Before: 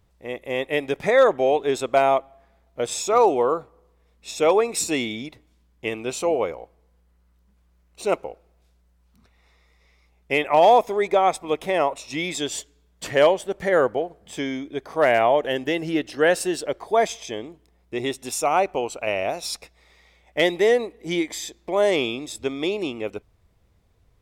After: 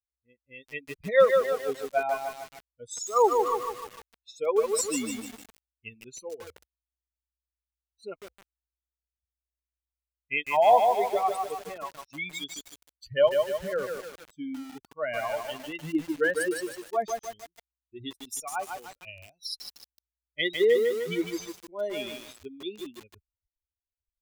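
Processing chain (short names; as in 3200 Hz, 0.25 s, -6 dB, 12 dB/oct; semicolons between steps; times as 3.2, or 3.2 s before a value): per-bin expansion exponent 3; 3.45–4.4 bell 2000 Hz +9.5 dB 1.9 oct; lo-fi delay 0.151 s, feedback 55%, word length 7-bit, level -4 dB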